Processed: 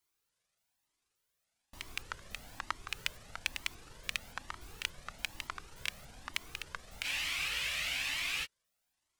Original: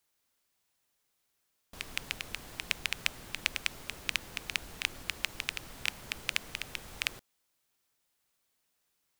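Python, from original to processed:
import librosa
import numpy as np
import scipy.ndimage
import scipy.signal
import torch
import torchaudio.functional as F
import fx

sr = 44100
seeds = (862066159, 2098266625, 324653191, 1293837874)

y = fx.pitch_trill(x, sr, semitones=-11.5, every_ms=288)
y = fx.spec_freeze(y, sr, seeds[0], at_s=7.06, hold_s=1.39)
y = fx.comb_cascade(y, sr, direction='rising', hz=1.1)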